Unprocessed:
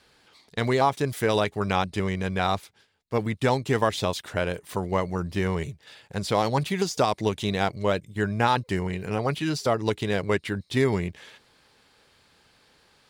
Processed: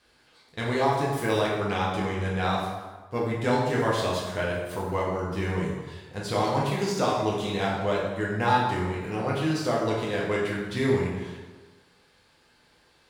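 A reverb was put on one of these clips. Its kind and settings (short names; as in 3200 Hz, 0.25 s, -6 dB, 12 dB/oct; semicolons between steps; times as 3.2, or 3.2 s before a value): plate-style reverb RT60 1.3 s, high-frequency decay 0.65×, DRR -5 dB; gain -7 dB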